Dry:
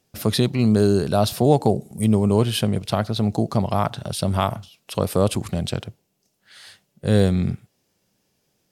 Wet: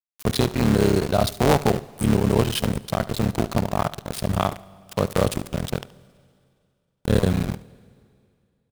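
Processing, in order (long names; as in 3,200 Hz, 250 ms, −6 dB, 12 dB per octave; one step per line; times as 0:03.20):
sub-harmonics by changed cycles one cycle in 3, muted
centre clipping without the shift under −25 dBFS
single-tap delay 73 ms −18 dB
on a send at −21.5 dB: convolution reverb RT60 2.4 s, pre-delay 46 ms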